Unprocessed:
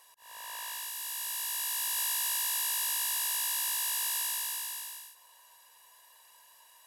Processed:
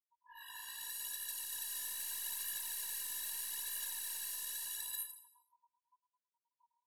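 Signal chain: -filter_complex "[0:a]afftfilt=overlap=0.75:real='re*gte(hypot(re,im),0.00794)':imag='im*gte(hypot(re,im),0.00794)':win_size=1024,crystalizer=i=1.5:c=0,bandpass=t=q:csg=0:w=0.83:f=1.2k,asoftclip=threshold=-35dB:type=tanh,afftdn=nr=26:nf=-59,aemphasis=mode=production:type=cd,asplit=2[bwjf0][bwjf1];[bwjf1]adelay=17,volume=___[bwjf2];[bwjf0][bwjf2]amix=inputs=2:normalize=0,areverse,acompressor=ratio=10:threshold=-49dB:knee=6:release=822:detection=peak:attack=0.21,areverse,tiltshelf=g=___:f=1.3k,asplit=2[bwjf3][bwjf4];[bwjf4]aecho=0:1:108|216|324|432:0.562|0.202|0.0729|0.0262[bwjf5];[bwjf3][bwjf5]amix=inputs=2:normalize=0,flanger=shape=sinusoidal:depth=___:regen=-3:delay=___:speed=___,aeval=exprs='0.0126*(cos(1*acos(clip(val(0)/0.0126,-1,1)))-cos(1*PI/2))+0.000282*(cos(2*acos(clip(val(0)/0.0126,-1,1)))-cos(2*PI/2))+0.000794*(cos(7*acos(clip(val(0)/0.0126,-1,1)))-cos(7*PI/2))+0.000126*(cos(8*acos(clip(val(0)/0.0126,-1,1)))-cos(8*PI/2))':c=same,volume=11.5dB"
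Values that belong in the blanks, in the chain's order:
-2dB, -7, 2.3, 1.7, 0.79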